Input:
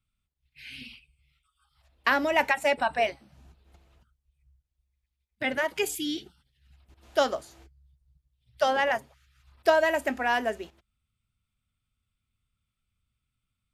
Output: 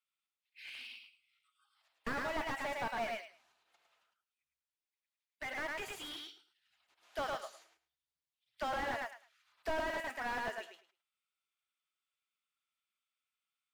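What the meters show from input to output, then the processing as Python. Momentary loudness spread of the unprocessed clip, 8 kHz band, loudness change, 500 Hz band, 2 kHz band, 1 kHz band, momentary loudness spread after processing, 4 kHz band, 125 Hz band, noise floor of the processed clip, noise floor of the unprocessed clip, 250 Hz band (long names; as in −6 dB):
18 LU, −13.0 dB, −13.0 dB, −14.5 dB, −11.5 dB, −11.5 dB, 14 LU, −11.0 dB, −3.5 dB, below −85 dBFS, −83 dBFS, −13.0 dB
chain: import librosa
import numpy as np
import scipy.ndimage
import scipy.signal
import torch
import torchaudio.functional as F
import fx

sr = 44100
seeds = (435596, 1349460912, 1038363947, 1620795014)

p1 = scipy.signal.sosfilt(scipy.signal.butter(2, 980.0, 'highpass', fs=sr, output='sos'), x)
p2 = fx.high_shelf(p1, sr, hz=9000.0, db=-9.0)
p3 = 10.0 ** (-20.0 / 20.0) * (np.abs((p2 / 10.0 ** (-20.0 / 20.0) + 3.0) % 4.0 - 2.0) - 1.0)
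p4 = fx.mod_noise(p3, sr, seeds[0], snr_db=30)
p5 = p4 + fx.echo_feedback(p4, sr, ms=106, feedback_pct=18, wet_db=-5.0, dry=0)
p6 = fx.slew_limit(p5, sr, full_power_hz=32.0)
y = F.gain(torch.from_numpy(p6), -4.0).numpy()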